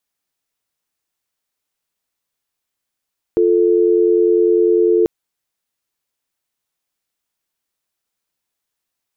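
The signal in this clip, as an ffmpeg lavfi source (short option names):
-f lavfi -i "aevalsrc='0.224*(sin(2*PI*350*t)+sin(2*PI*440*t))':d=1.69:s=44100"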